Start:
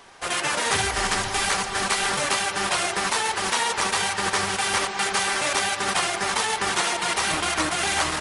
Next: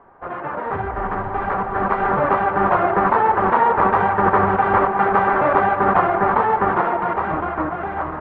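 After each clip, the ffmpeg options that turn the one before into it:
-af "lowpass=f=1.3k:w=0.5412,lowpass=f=1.3k:w=1.3066,dynaudnorm=f=400:g=9:m=11.5dB,volume=2dB"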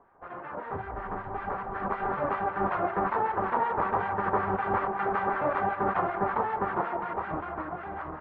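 -filter_complex "[0:a]acrossover=split=1200[a][b];[a]aeval=exprs='val(0)*(1-0.7/2+0.7/2*cos(2*PI*5.3*n/s))':c=same[c];[b]aeval=exprs='val(0)*(1-0.7/2-0.7/2*cos(2*PI*5.3*n/s))':c=same[d];[c][d]amix=inputs=2:normalize=0,volume=-8dB"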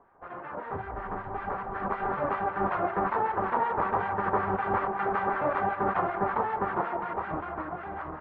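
-af anull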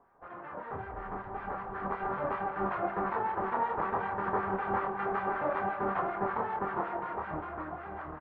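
-filter_complex "[0:a]asplit=2[a][b];[b]adelay=26,volume=-7dB[c];[a][c]amix=inputs=2:normalize=0,aecho=1:1:261:0.168,volume=-5dB"

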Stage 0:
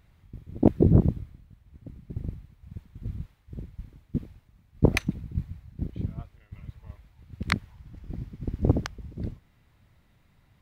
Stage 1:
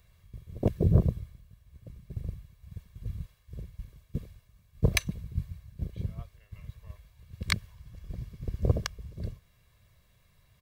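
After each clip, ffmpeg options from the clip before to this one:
-filter_complex "[0:a]highshelf=f=3.5k:g=11,aecho=1:1:1.8:0.66,acrossover=split=290|1700[a][b][c];[b]alimiter=limit=-16.5dB:level=0:latency=1:release=130[d];[a][d][c]amix=inputs=3:normalize=0,volume=-5dB"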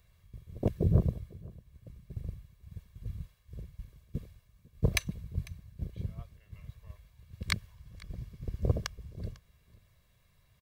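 -af "aecho=1:1:499:0.075,volume=-3dB"

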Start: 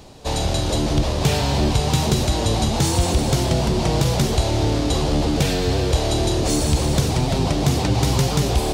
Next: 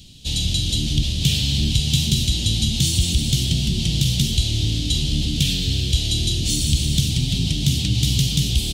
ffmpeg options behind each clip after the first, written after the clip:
-af "firequalizer=gain_entry='entry(190,0);entry(470,-22);entry(1000,-29);entry(3100,9);entry(4800,2)':delay=0.05:min_phase=1"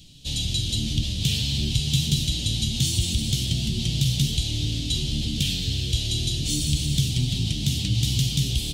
-af "flanger=delay=6.4:depth=3.4:regen=58:speed=0.45:shape=triangular"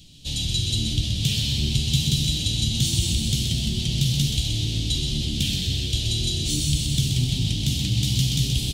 -af "aecho=1:1:127|254|381|508|635|762:0.473|0.227|0.109|0.0523|0.0251|0.0121"

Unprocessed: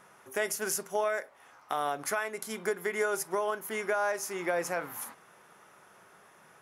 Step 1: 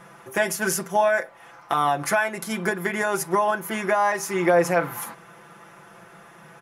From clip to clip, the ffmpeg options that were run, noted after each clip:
-af "bass=f=250:g=6,treble=f=4k:g=-5,aecho=1:1:5.9:0.79,volume=8dB"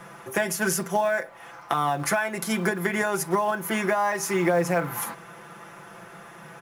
-filter_complex "[0:a]acrossover=split=210[a][b];[b]acompressor=threshold=-27dB:ratio=2.5[c];[a][c]amix=inputs=2:normalize=0,asplit=2[d][e];[e]acrusher=bits=4:mode=log:mix=0:aa=0.000001,volume=-7.5dB[f];[d][f]amix=inputs=2:normalize=0"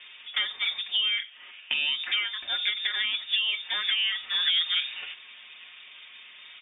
-af "highpass=120,lowpass=f=3.2k:t=q:w=0.5098,lowpass=f=3.2k:t=q:w=0.6013,lowpass=f=3.2k:t=q:w=0.9,lowpass=f=3.2k:t=q:w=2.563,afreqshift=-3800,volume=-3dB"

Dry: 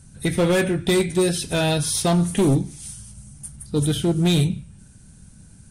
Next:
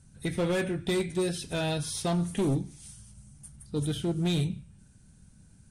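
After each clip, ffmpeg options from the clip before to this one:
-af "highshelf=f=12k:g=-10.5,volume=-9dB"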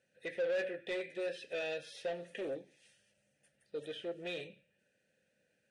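-filter_complex "[0:a]asplit=3[a][b][c];[a]bandpass=f=530:t=q:w=8,volume=0dB[d];[b]bandpass=f=1.84k:t=q:w=8,volume=-6dB[e];[c]bandpass=f=2.48k:t=q:w=8,volume=-9dB[f];[d][e][f]amix=inputs=3:normalize=0,asplit=2[g][h];[h]highpass=f=720:p=1,volume=18dB,asoftclip=type=tanh:threshold=-24.5dB[i];[g][i]amix=inputs=2:normalize=0,lowpass=f=6.4k:p=1,volume=-6dB,volume=-3dB"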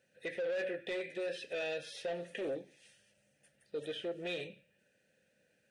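-af "alimiter=level_in=10.5dB:limit=-24dB:level=0:latency=1:release=53,volume=-10.5dB,volume=3.5dB"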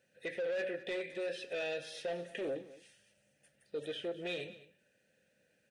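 -af "aecho=1:1:210:0.133"

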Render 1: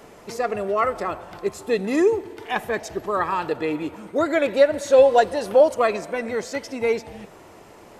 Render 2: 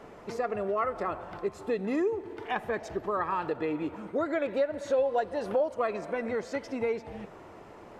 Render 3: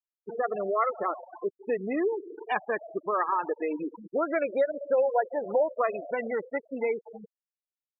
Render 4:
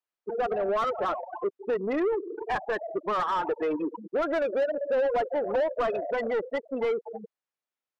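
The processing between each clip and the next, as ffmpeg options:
-af "lowpass=f=2k:p=1,acompressor=threshold=-27dB:ratio=2.5,equalizer=f=1.3k:t=o:w=0.77:g=2,volume=-2dB"
-af "lowshelf=f=310:g=-9.5,acrusher=bits=9:mix=0:aa=0.000001,afftfilt=real='re*gte(hypot(re,im),0.0316)':imag='im*gte(hypot(re,im),0.0316)':win_size=1024:overlap=0.75,volume=4.5dB"
-filter_complex "[0:a]asplit=2[a][b];[b]highpass=f=720:p=1,volume=23dB,asoftclip=type=tanh:threshold=-13dB[c];[a][c]amix=inputs=2:normalize=0,lowpass=f=1.1k:p=1,volume=-6dB,volume=-4.5dB"

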